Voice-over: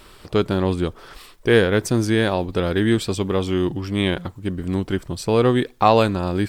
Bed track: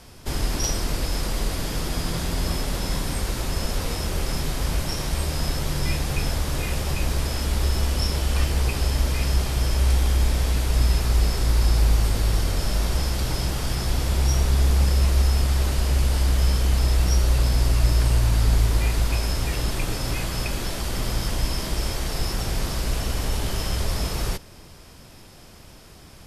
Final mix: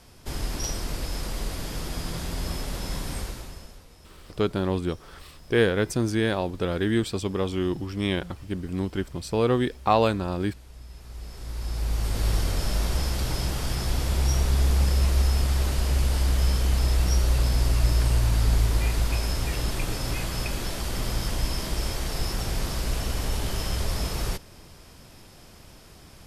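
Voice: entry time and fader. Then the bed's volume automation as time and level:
4.05 s, -5.5 dB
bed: 3.2 s -5.5 dB
3.87 s -25 dB
10.86 s -25 dB
12.27 s -2.5 dB

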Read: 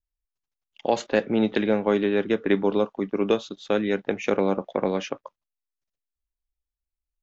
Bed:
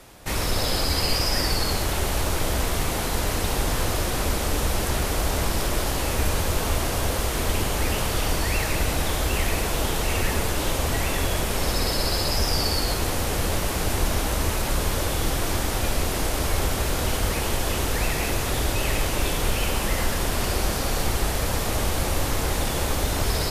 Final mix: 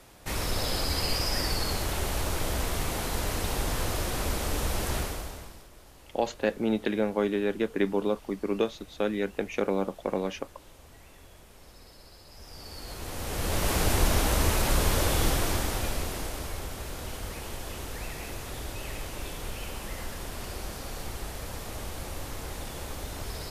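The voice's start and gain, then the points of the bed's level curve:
5.30 s, -5.0 dB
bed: 4.99 s -5.5 dB
5.69 s -28 dB
12.26 s -28 dB
13.71 s -0.5 dB
15.24 s -0.5 dB
16.63 s -13 dB

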